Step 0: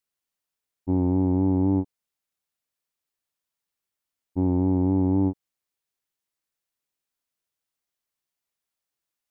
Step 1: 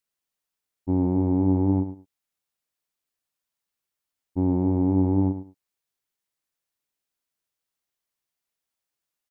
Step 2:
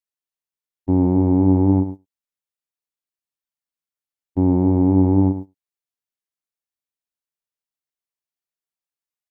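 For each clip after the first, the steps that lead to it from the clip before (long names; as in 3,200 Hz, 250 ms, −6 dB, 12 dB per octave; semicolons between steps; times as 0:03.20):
repeating echo 105 ms, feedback 18%, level −11 dB
noise gate −34 dBFS, range −15 dB; level +6 dB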